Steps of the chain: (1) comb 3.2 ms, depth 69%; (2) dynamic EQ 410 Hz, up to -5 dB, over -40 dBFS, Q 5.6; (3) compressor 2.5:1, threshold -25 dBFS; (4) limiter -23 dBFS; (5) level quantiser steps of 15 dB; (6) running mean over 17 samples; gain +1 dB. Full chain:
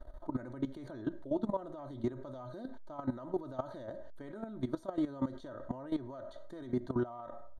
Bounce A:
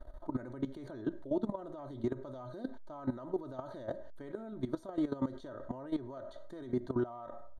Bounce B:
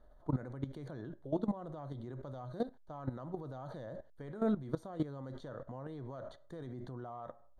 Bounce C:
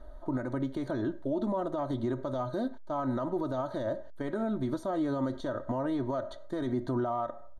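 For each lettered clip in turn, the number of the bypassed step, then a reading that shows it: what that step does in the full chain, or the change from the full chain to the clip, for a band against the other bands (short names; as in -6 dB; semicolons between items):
2, 1 kHz band -1.5 dB; 1, 125 Hz band +5.0 dB; 5, crest factor change -5.5 dB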